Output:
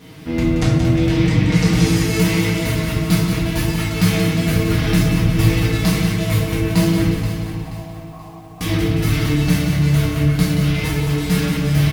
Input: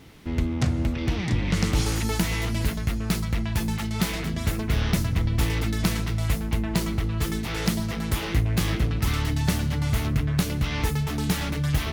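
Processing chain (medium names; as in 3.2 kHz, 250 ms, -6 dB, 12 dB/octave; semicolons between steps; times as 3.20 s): high-pass 51 Hz; comb 6.4 ms; gain riding within 5 dB 2 s; 7.14–8.61 s: cascade formant filter a; feedback delay 479 ms, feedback 40%, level -12 dB; simulated room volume 240 m³, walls mixed, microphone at 1.8 m; bit-crushed delay 178 ms, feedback 55%, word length 8-bit, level -7 dB; trim -1 dB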